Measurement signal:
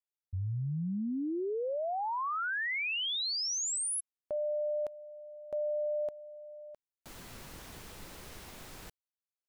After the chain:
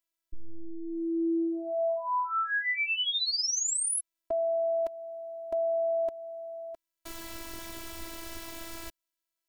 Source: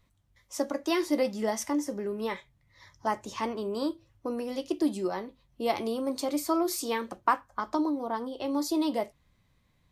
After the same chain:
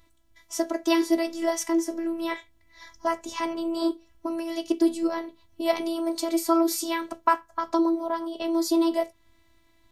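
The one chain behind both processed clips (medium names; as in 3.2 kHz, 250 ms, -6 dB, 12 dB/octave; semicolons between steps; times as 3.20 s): robot voice 331 Hz; in parallel at -2.5 dB: compression, threshold -44 dBFS; on the sum: trim +5 dB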